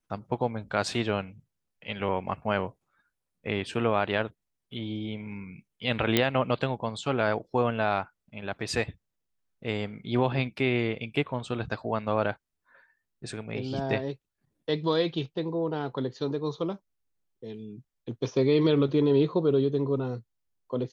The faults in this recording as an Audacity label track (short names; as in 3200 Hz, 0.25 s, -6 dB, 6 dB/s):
6.170000	6.170000	pop -7 dBFS